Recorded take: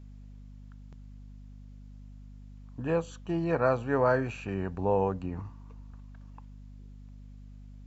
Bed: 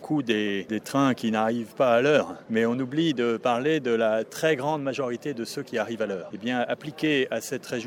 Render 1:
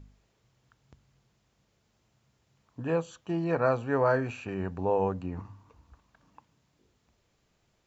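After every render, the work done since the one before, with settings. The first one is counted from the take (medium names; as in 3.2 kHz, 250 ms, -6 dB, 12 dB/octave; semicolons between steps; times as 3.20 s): de-hum 50 Hz, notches 5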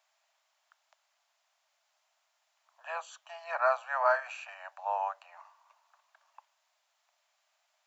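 steep high-pass 600 Hz 96 dB/octave; dynamic bell 1.3 kHz, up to +4 dB, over -43 dBFS, Q 1.8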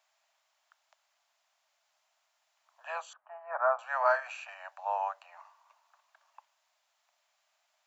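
3.13–3.79 s: low-pass 1.5 kHz 24 dB/octave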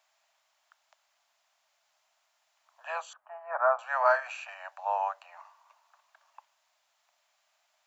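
trim +2.5 dB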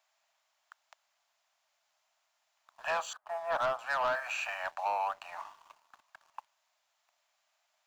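compression 6:1, threshold -33 dBFS, peak gain reduction 13.5 dB; waveshaping leveller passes 2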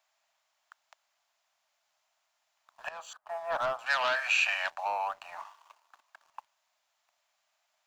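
2.89–3.29 s: fade in linear, from -20 dB; 3.86–4.70 s: frequency weighting D; 5.44–6.24 s: high-pass 700 Hz -> 230 Hz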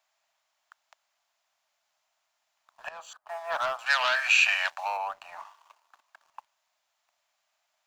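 3.28–4.97 s: tilt shelf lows -6.5 dB, about 740 Hz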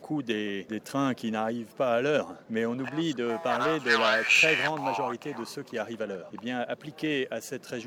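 add bed -5.5 dB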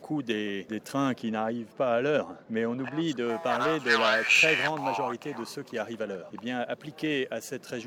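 1.18–3.08 s: low-pass 3.4 kHz 6 dB/octave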